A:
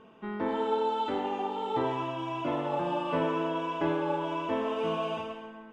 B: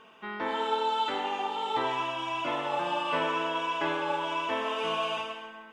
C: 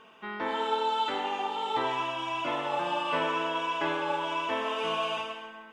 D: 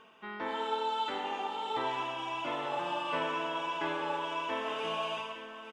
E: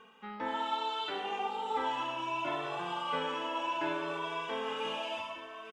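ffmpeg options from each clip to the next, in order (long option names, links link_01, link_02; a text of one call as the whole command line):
ffmpeg -i in.wav -af "tiltshelf=frequency=680:gain=-9.5" out.wav
ffmpeg -i in.wav -af anull out.wav
ffmpeg -i in.wav -af "areverse,acompressor=mode=upward:threshold=-44dB:ratio=2.5,areverse,aecho=1:1:863:0.251,volume=-4.5dB" out.wav
ffmpeg -i in.wav -filter_complex "[0:a]asplit=2[link_01][link_02];[link_02]adelay=2.1,afreqshift=0.66[link_03];[link_01][link_03]amix=inputs=2:normalize=1,volume=2.5dB" out.wav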